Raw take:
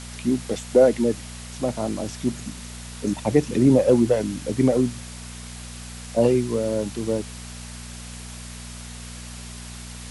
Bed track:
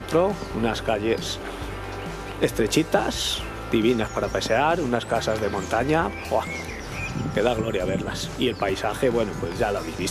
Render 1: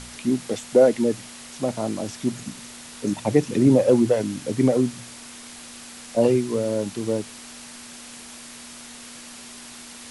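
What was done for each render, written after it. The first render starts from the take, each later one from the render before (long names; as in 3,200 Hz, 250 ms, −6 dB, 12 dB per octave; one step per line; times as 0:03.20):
hum removal 60 Hz, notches 3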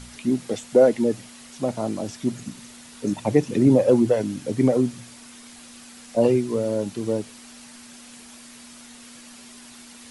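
broadband denoise 6 dB, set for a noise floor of −42 dBFS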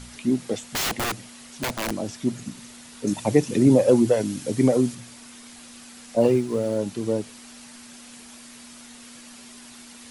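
0:00.71–0:01.91: wrap-around overflow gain 20.5 dB
0:03.07–0:04.95: high-shelf EQ 4,300 Hz +7.5 dB
0:06.20–0:06.78: mu-law and A-law mismatch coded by A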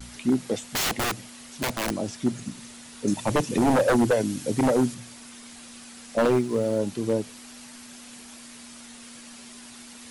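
wave folding −14 dBFS
pitch vibrato 0.3 Hz 15 cents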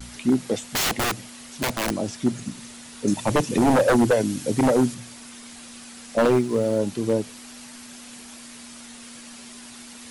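level +2.5 dB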